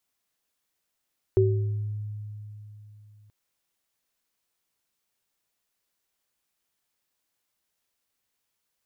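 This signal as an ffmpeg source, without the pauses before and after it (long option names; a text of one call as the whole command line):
ffmpeg -f lavfi -i "aevalsrc='0.106*pow(10,-3*t/3.47)*sin(2*PI*105*t)+0.168*pow(10,-3*t/0.66)*sin(2*PI*381*t)':duration=1.93:sample_rate=44100" out.wav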